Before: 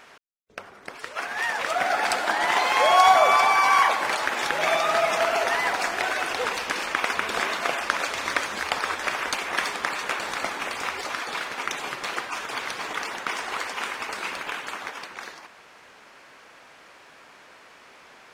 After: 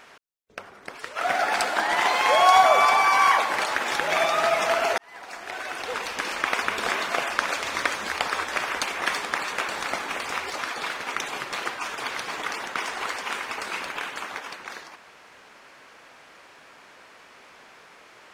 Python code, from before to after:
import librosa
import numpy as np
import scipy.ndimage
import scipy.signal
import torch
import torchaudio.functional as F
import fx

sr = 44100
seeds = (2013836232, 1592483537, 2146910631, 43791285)

y = fx.edit(x, sr, fx.cut(start_s=1.21, length_s=0.51),
    fx.fade_in_span(start_s=5.49, length_s=1.47), tone=tone)